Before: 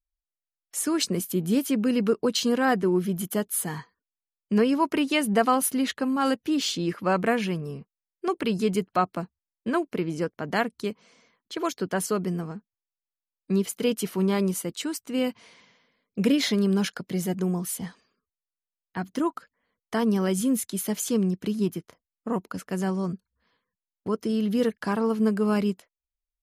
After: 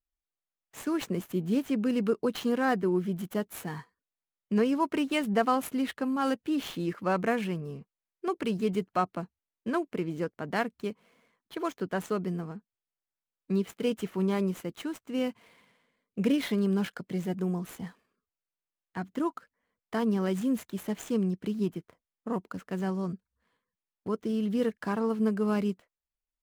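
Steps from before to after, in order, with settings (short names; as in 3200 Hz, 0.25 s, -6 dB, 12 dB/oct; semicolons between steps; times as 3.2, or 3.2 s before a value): median filter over 9 samples; gain -4 dB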